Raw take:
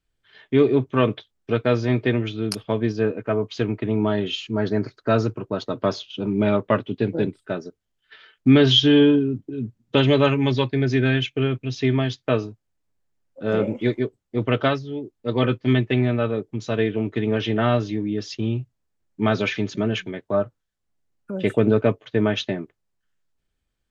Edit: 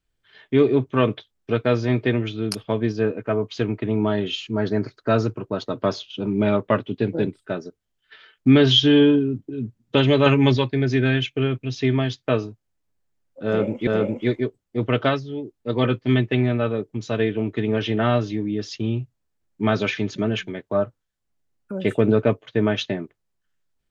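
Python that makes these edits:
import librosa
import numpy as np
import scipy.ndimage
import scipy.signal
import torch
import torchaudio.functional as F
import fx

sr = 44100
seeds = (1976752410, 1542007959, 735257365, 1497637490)

y = fx.edit(x, sr, fx.clip_gain(start_s=10.26, length_s=0.31, db=4.0),
    fx.repeat(start_s=13.46, length_s=0.41, count=2), tone=tone)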